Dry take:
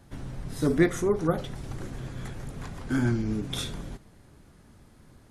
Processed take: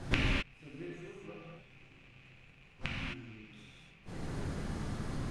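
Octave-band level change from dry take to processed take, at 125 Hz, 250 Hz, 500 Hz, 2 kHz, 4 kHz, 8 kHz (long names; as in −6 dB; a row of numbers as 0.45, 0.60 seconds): −8.5, −13.5, −17.0, −2.5, −3.5, −13.0 decibels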